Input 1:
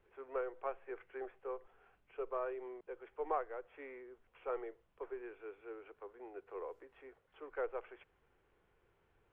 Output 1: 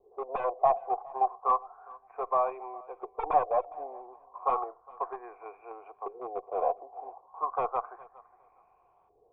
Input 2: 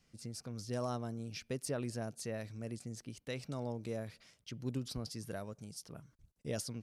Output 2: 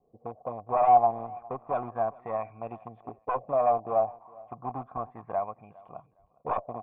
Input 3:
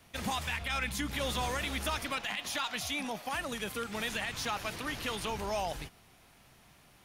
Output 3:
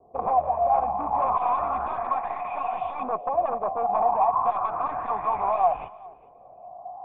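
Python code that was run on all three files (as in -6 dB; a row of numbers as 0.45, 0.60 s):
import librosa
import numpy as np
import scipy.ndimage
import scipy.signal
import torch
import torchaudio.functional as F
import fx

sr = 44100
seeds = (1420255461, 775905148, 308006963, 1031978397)

p1 = fx.filter_lfo_lowpass(x, sr, shape='saw_up', hz=0.33, low_hz=410.0, high_hz=3400.0, q=5.6)
p2 = fx.quant_dither(p1, sr, seeds[0], bits=6, dither='none')
p3 = p1 + (p2 * 10.0 ** (-3.0 / 20.0))
p4 = fx.tube_stage(p3, sr, drive_db=19.0, bias=0.55)
p5 = fx.fold_sine(p4, sr, drive_db=13, ceiling_db=-16.0)
p6 = fx.formant_cascade(p5, sr, vowel='a')
p7 = p6 + fx.echo_feedback(p6, sr, ms=410, feedback_pct=21, wet_db=-23, dry=0)
y = p7 * 10.0 ** (8.5 / 20.0)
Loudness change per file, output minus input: +13.5, +13.5, +9.5 LU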